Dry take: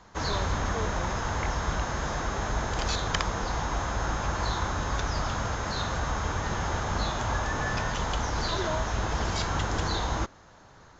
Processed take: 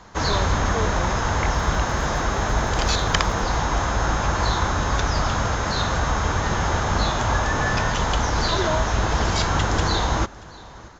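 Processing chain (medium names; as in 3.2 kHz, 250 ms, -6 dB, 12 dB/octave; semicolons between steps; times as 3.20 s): 1.51–3.55 s: crackle 81 per s -41 dBFS; delay 632 ms -22 dB; trim +7.5 dB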